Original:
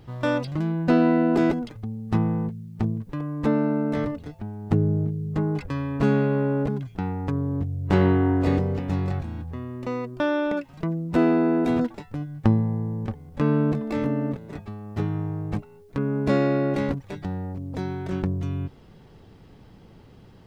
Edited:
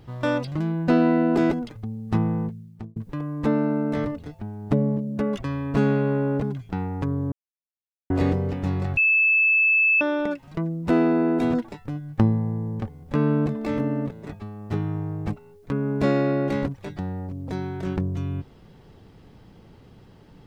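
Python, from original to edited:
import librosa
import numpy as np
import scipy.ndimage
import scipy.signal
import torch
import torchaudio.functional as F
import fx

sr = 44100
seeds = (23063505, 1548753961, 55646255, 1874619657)

y = fx.edit(x, sr, fx.fade_out_span(start_s=2.44, length_s=0.52),
    fx.speed_span(start_s=4.72, length_s=0.98, speed=1.36),
    fx.silence(start_s=7.58, length_s=0.78),
    fx.bleep(start_s=9.23, length_s=1.04, hz=2620.0, db=-15.5), tone=tone)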